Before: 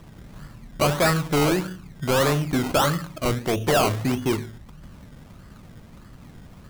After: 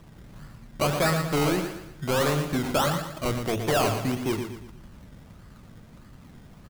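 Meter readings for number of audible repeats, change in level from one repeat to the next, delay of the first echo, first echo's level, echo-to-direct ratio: 4, -8.0 dB, 117 ms, -8.0 dB, -7.0 dB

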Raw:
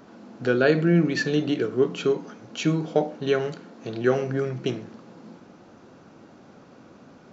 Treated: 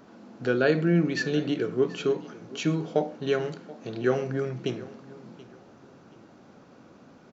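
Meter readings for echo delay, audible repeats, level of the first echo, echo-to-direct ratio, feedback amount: 730 ms, 2, -19.5 dB, -19.0 dB, 30%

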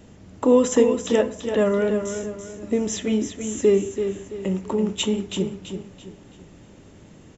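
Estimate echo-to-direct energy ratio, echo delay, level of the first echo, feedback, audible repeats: -7.5 dB, 334 ms, -8.0 dB, 37%, 4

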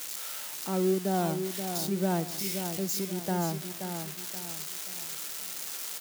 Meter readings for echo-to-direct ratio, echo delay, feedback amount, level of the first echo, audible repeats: -7.0 dB, 528 ms, 39%, -7.5 dB, 4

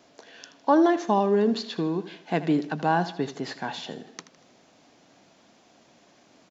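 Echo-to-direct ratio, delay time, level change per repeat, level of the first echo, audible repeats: -13.5 dB, 79 ms, -7.0 dB, -14.5 dB, 3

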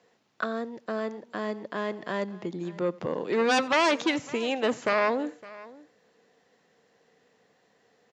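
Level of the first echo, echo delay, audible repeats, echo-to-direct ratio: -23.0 dB, 89 ms, 2, -18.0 dB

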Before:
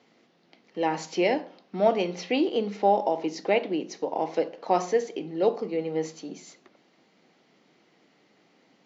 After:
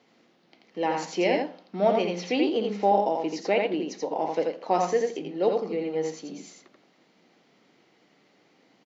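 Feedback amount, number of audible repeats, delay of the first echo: no regular repeats, 1, 84 ms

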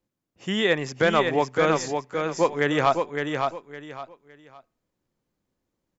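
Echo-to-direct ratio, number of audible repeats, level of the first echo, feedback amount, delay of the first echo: -4.5 dB, 3, -5.0 dB, 26%, 561 ms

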